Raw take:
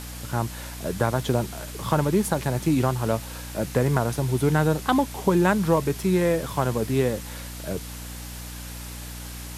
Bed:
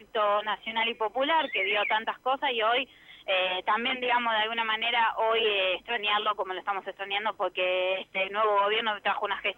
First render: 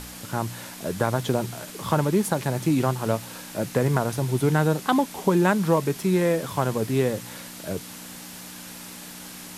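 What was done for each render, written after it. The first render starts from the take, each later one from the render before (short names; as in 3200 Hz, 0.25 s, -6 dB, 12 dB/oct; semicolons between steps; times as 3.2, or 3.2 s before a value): de-hum 60 Hz, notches 2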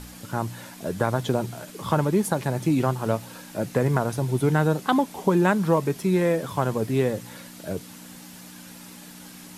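denoiser 6 dB, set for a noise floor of -41 dBFS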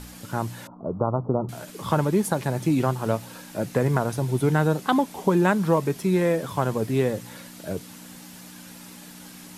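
0.67–1.49 steep low-pass 1300 Hz 96 dB/oct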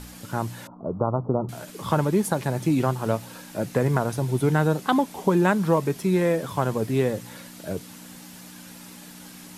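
nothing audible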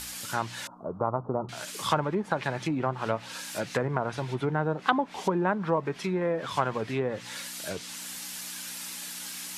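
treble ducked by the level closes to 890 Hz, closed at -17 dBFS; tilt shelf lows -9.5 dB, about 930 Hz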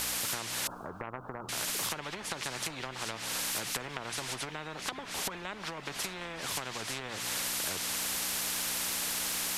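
compressor, threshold -32 dBFS, peak gain reduction 14 dB; spectral compressor 4:1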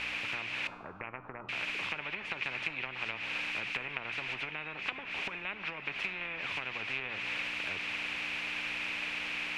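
synth low-pass 2500 Hz, resonance Q 6.2; resonator 100 Hz, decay 0.77 s, harmonics all, mix 50%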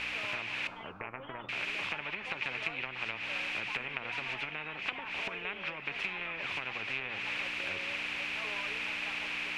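add bed -22.5 dB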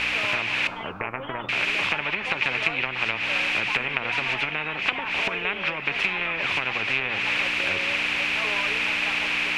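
gain +11.5 dB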